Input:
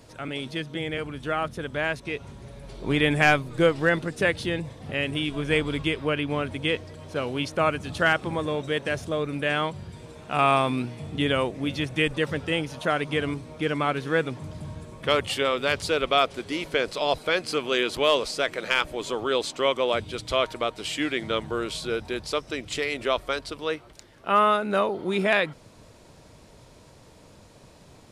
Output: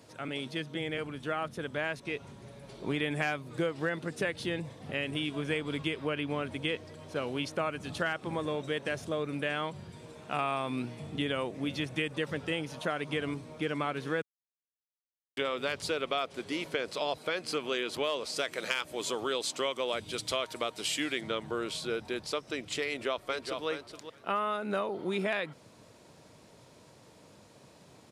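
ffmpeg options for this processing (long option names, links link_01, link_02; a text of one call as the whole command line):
ffmpeg -i in.wav -filter_complex "[0:a]asettb=1/sr,asplit=3[link_01][link_02][link_03];[link_01]atrim=end=18.364[link_04];[link_02]atrim=start=18.36:end=21.21,asetpts=PTS-STARTPTS,afade=type=in:duration=0.004:curve=qsin,afade=type=out:start_time=2.846:duration=0.004:curve=qsin,highshelf=frequency=4100:gain=9.5[link_05];[link_03]atrim=start=21.206[link_06];[link_04][link_05]acrossfade=duration=0.004:curve1=hsin:curve2=qsin[link_07];[link_07][link_06]acrossfade=duration=0.004:curve1=qsin:curve2=hsin,asplit=2[link_08][link_09];[link_09]afade=type=in:start_time=22.87:duration=0.01,afade=type=out:start_time=23.67:duration=0.01,aecho=0:1:420|840:0.354813|0.0354813[link_10];[link_08][link_10]amix=inputs=2:normalize=0,asplit=3[link_11][link_12][link_13];[link_11]atrim=end=14.22,asetpts=PTS-STARTPTS,afade=type=out:start_time=14.216:duration=0.004:curve=hsin[link_14];[link_12]atrim=start=14.22:end=15.37,asetpts=PTS-STARTPTS,volume=0[link_15];[link_13]atrim=start=15.37,asetpts=PTS-STARTPTS,afade=type=in:duration=0.004:curve=hsin[link_16];[link_14][link_15][link_16]concat=n=3:v=0:a=1,highpass=120,acompressor=threshold=-24dB:ratio=5,volume=-4dB" out.wav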